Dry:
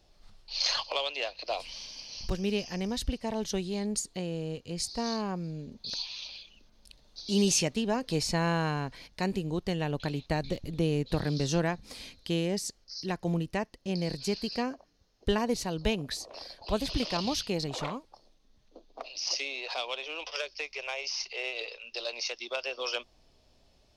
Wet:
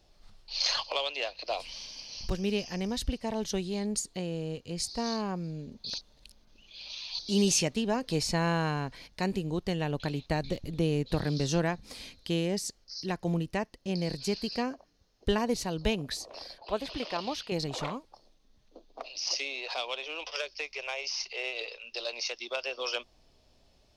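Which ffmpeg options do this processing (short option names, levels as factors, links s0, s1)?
-filter_complex "[0:a]asettb=1/sr,asplit=3[s0][s1][s2];[s0]atrim=end=16.584[s3];[s1]atrim=start=16.58:end=17.52,asetpts=PTS-STARTPTS,afade=t=in:d=0.004:c=qsin,afade=t=out:st=0.936:d=0.004:c=qsin,bass=f=250:g=-13,treble=f=4000:g=-11[s4];[s2]atrim=start=17.516[s5];[s3][s4]acrossfade=d=0.004:c1=hsin:c2=qsin[s6];[s6][s5]acrossfade=d=0.004:c1=qsin:c2=hsin,asplit=3[s7][s8][s9];[s7]atrim=end=5.982[s10];[s8]atrim=start=5.978:end=7.192,asetpts=PTS-STARTPTS,areverse[s11];[s9]atrim=start=7.188[s12];[s10][s11]acrossfade=d=0.004:c1=hsin:c2=hsin[s13];[s13][s12]acrossfade=d=0.004:c1=hsin:c2=hsin"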